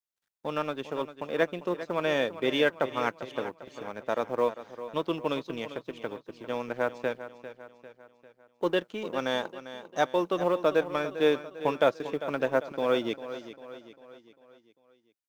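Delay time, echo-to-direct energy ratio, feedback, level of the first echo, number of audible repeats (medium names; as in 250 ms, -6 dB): 398 ms, -12.0 dB, 49%, -13.0 dB, 4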